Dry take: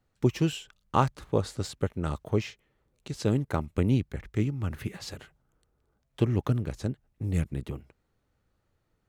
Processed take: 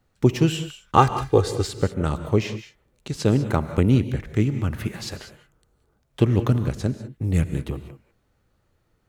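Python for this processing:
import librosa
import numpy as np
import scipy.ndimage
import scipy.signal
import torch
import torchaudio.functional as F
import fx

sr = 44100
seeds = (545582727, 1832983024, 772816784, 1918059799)

y = fx.comb(x, sr, ms=2.5, depth=0.74, at=(0.97, 1.65))
y = fx.rev_gated(y, sr, seeds[0], gate_ms=220, shape='rising', drr_db=10.5)
y = y * 10.0 ** (6.5 / 20.0)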